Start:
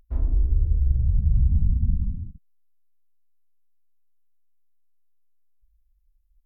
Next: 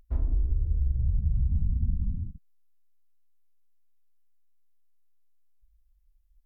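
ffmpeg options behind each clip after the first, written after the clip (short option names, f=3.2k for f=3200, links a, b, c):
-af "acompressor=threshold=-22dB:ratio=4"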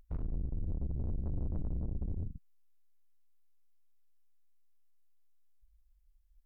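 -af "aeval=exprs='(tanh(56.2*val(0)+0.7)-tanh(0.7))/56.2':c=same,volume=1.5dB"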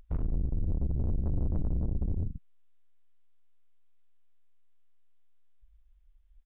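-af "aresample=8000,aresample=44100,volume=6dB"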